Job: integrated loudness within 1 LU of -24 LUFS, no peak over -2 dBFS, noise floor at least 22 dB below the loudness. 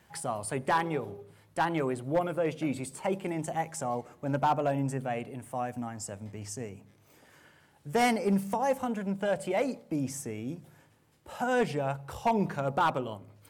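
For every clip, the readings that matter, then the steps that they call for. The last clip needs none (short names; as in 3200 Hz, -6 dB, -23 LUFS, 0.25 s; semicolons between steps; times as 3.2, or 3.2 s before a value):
clipped 0.5%; flat tops at -19.5 dBFS; loudness -31.5 LUFS; peak -19.5 dBFS; loudness target -24.0 LUFS
-> clip repair -19.5 dBFS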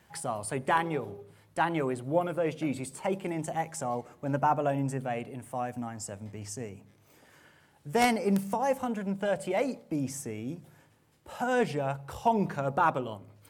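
clipped 0.0%; loudness -31.0 LUFS; peak -10.5 dBFS; loudness target -24.0 LUFS
-> gain +7 dB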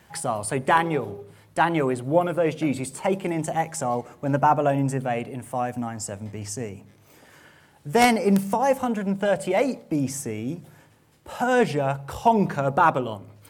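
loudness -24.0 LUFS; peak -3.5 dBFS; noise floor -56 dBFS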